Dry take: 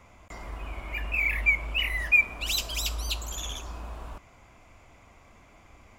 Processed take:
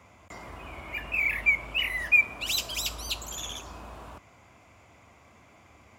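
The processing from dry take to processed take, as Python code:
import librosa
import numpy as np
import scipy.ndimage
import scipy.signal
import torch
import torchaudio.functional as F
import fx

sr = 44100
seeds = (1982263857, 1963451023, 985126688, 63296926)

y = scipy.signal.sosfilt(scipy.signal.butter(4, 72.0, 'highpass', fs=sr, output='sos'), x)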